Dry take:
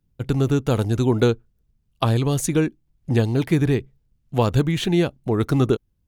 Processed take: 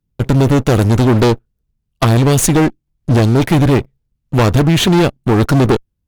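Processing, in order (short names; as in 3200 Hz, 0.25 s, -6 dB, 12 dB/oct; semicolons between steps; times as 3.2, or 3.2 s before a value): sample leveller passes 3; one-sided clip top -19 dBFS; gain +3.5 dB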